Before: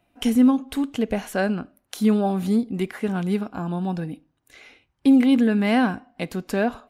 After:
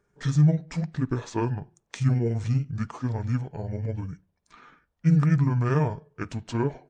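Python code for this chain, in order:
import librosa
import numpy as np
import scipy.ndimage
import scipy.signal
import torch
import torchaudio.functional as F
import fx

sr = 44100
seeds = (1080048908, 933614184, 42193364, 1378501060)

y = fx.pitch_heads(x, sr, semitones=-9.0)
y = y * 10.0 ** (-2.5 / 20.0)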